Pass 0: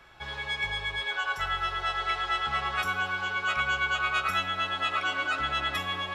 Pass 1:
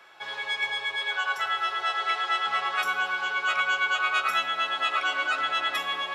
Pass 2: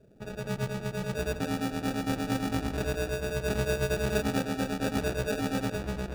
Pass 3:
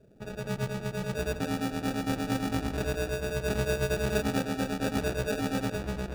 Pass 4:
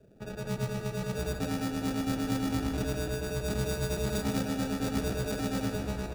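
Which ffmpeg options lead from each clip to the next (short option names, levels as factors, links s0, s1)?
-af "highpass=410,volume=1.33"
-af "acrusher=samples=42:mix=1:aa=0.000001,afftdn=nr=13:nf=-49,volume=0.708"
-af anull
-filter_complex "[0:a]acrossover=split=260|2800[s0][s1][s2];[s1]asoftclip=type=tanh:threshold=0.0251[s3];[s0][s3][s2]amix=inputs=3:normalize=0,aecho=1:1:153|306|459|612|765|918:0.316|0.177|0.0992|0.0555|0.0311|0.0174"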